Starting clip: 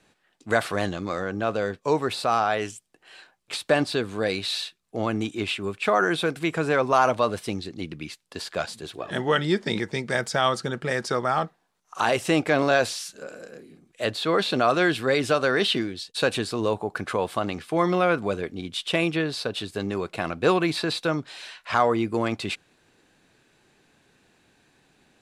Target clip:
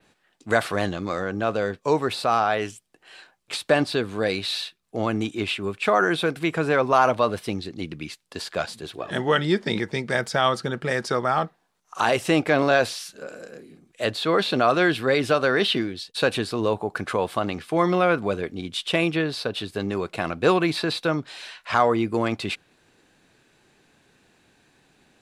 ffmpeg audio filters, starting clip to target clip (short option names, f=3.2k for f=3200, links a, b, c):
-af "adynamicequalizer=threshold=0.00316:dfrequency=7400:dqfactor=1.3:tfrequency=7400:tqfactor=1.3:attack=5:release=100:ratio=0.375:range=3:mode=cutabove:tftype=bell,volume=1.5dB"